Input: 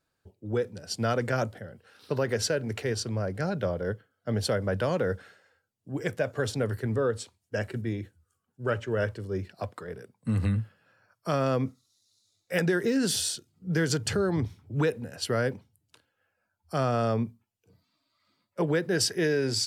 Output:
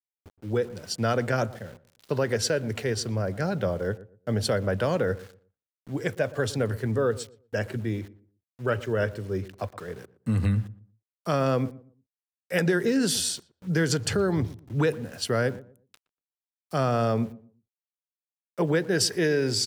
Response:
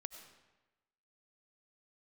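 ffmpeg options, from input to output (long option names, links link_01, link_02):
-filter_complex "[0:a]aeval=exprs='val(0)*gte(abs(val(0)),0.00376)':channel_layout=same,asplit=2[link_01][link_02];[link_02]adelay=119,lowpass=frequency=920:poles=1,volume=-16.5dB,asplit=2[link_03][link_04];[link_04]adelay=119,lowpass=frequency=920:poles=1,volume=0.27,asplit=2[link_05][link_06];[link_06]adelay=119,lowpass=frequency=920:poles=1,volume=0.27[link_07];[link_01][link_03][link_05][link_07]amix=inputs=4:normalize=0,volume=2dB"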